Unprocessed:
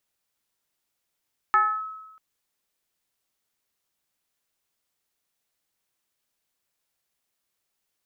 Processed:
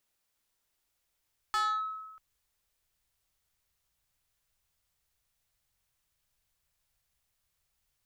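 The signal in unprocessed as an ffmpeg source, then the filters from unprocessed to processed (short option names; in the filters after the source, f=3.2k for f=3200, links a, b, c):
-f lavfi -i "aevalsrc='0.2*pow(10,-3*t/1.05)*sin(2*PI*1290*t+0.74*clip(1-t/0.29,0,1)*sin(2*PI*0.35*1290*t))':d=0.64:s=44100"
-af "asubboost=boost=11:cutoff=86,asoftclip=type=tanh:threshold=-28dB"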